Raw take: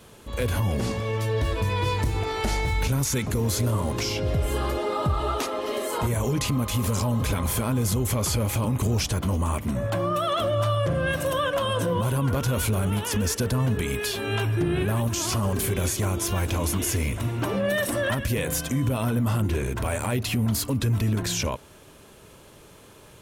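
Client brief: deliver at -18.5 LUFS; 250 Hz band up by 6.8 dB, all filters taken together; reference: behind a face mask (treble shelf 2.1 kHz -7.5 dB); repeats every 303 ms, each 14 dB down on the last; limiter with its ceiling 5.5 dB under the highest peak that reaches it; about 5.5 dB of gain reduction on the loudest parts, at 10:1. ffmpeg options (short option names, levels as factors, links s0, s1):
-af "equalizer=f=250:t=o:g=8.5,acompressor=threshold=0.0891:ratio=10,alimiter=limit=0.112:level=0:latency=1,highshelf=f=2100:g=-7.5,aecho=1:1:303|606:0.2|0.0399,volume=3.16"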